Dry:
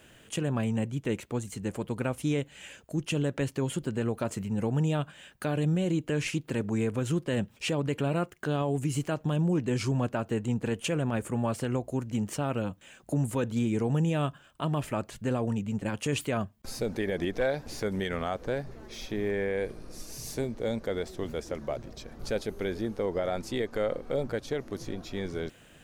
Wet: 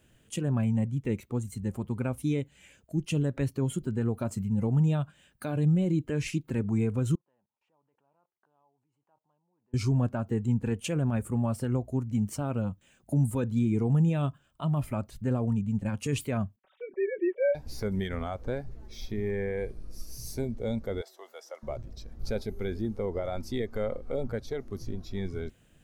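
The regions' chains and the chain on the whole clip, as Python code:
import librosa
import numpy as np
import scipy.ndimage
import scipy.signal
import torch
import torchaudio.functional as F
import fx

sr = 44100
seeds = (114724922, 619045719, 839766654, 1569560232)

y = fx.chain(x, sr, fx.level_steps(step_db=23),
    fx.bandpass_q(hz=900.0, q=4.6), at=(7.15, 9.74))
y = fx.chain(y, sr, fx.sine_speech(),
    fx.comb(ms=5.3, depth=0.68), at=(16.56, 17.55))
y = fx.chain(y, sr, fx.highpass(hz=540.0, slope=24),
    fx.notch(hz=2400.0, q=9.1), at=(21.01, 21.63))
y = fx.high_shelf(y, sr, hz=4700.0, db=6.0)
y = fx.noise_reduce_blind(y, sr, reduce_db=8)
y = fx.low_shelf(y, sr, hz=290.0, db=12.0)
y = F.gain(torch.from_numpy(y), -5.5).numpy()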